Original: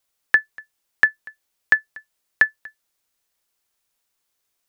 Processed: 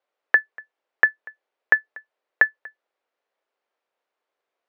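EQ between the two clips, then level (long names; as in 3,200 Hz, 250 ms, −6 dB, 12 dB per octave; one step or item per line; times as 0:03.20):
band-pass filter 370–2,200 Hz
parametric band 520 Hz +8.5 dB 1.3 octaves
0.0 dB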